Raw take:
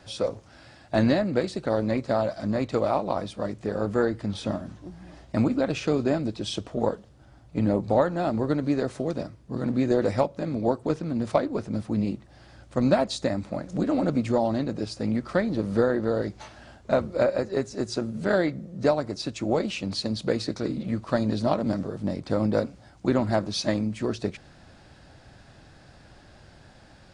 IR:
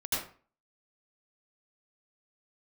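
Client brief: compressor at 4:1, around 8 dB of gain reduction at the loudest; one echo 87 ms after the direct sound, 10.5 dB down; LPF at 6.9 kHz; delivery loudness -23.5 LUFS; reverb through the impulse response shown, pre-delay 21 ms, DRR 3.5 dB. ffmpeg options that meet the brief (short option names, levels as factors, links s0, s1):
-filter_complex "[0:a]lowpass=6900,acompressor=threshold=0.0501:ratio=4,aecho=1:1:87:0.299,asplit=2[s0][s1];[1:a]atrim=start_sample=2205,adelay=21[s2];[s1][s2]afir=irnorm=-1:irlink=0,volume=0.316[s3];[s0][s3]amix=inputs=2:normalize=0,volume=2.11"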